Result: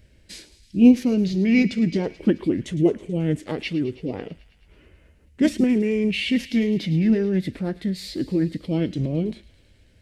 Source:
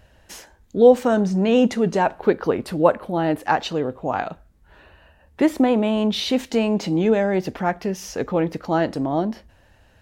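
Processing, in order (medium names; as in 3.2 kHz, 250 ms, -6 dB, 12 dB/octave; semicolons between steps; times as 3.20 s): high-order bell 1.2 kHz -14.5 dB; formant shift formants -5 st; feedback echo behind a high-pass 108 ms, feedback 74%, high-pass 2 kHz, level -15 dB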